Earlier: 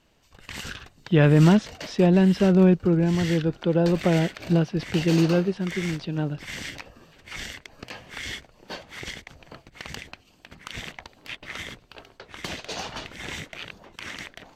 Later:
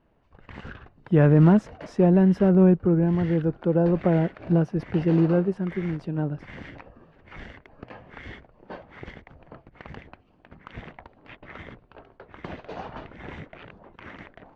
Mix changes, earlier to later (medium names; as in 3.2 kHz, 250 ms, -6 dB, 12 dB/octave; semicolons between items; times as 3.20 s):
speech: remove Chebyshev low-pass 3.7 kHz, order 3; master: add low-pass 1.3 kHz 12 dB/octave